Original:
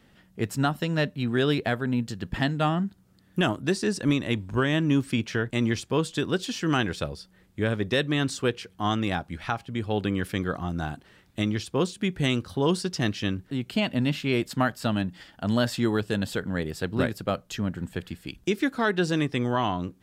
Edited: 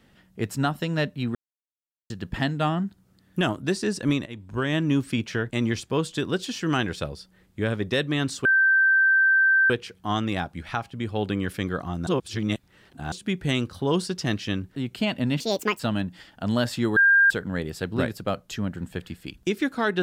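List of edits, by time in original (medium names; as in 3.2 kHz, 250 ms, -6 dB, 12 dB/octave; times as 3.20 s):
1.35–2.10 s: mute
4.26–4.75 s: fade in, from -18 dB
8.45 s: add tone 1.56 kHz -15.5 dBFS 1.25 s
10.82–11.87 s: reverse
14.15–14.80 s: speed 165%
15.97–16.31 s: bleep 1.6 kHz -13.5 dBFS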